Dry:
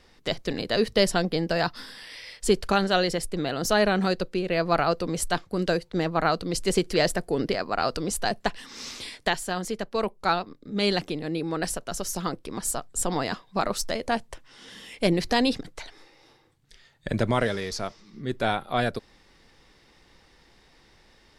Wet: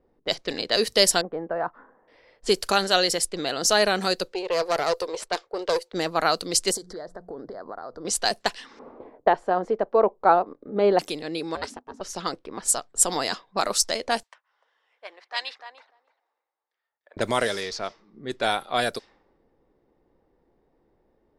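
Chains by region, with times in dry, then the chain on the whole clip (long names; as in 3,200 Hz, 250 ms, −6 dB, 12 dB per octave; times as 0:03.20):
0:01.21–0:02.08: low-pass filter 1,300 Hz 24 dB per octave + low-shelf EQ 380 Hz −7 dB
0:04.32–0:05.93: low shelf with overshoot 300 Hz −13.5 dB, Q 3 + tube saturation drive 17 dB, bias 0.7
0:06.71–0:08.05: mains-hum notches 60/120/180 Hz + downward compressor 12 to 1, threshold −31 dBFS + Butterworth band-reject 2,600 Hz, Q 1.2
0:08.79–0:10.99: low-pass filter 1,100 Hz + parametric band 620 Hz +9 dB 2.7 octaves
0:11.55–0:12.01: ring modulation 250 Hz + expander for the loud parts, over −49 dBFS
0:14.23–0:17.17: four-pole ladder high-pass 820 Hz, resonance 20% + repeating echo 297 ms, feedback 15%, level −7 dB
whole clip: low-pass that shuts in the quiet parts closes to 430 Hz, open at −22.5 dBFS; bass and treble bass −12 dB, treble +11 dB; level +1.5 dB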